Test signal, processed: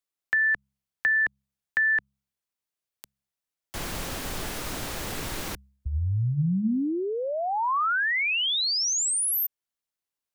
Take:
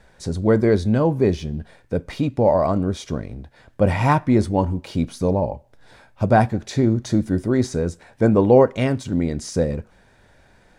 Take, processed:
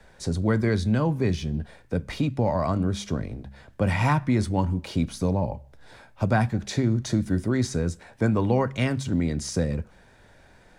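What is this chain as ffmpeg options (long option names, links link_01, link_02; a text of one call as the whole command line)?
ffmpeg -i in.wav -filter_complex "[0:a]acrossover=split=120|240|1000[link_01][link_02][link_03][link_04];[link_01]acompressor=threshold=-27dB:ratio=4[link_05];[link_02]acompressor=threshold=-24dB:ratio=4[link_06];[link_03]acompressor=threshold=-31dB:ratio=4[link_07];[link_04]acompressor=threshold=-24dB:ratio=4[link_08];[link_05][link_06][link_07][link_08]amix=inputs=4:normalize=0,bandreject=frequency=67.29:width_type=h:width=4,bandreject=frequency=134.58:width_type=h:width=4,bandreject=frequency=201.87:width_type=h:width=4" out.wav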